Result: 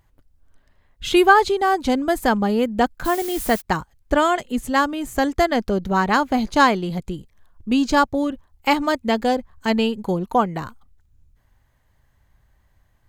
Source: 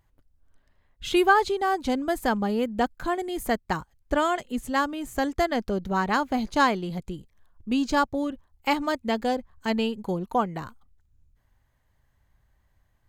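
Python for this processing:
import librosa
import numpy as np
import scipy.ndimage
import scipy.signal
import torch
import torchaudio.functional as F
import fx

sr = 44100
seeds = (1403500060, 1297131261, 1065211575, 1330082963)

y = fx.dmg_noise_colour(x, sr, seeds[0], colour='blue', level_db=-40.0, at=(3.04, 3.6), fade=0.02)
y = F.gain(torch.from_numpy(y), 6.0).numpy()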